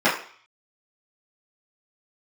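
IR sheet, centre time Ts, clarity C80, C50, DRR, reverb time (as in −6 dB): 32 ms, 11.0 dB, 7.0 dB, −12.0 dB, 0.50 s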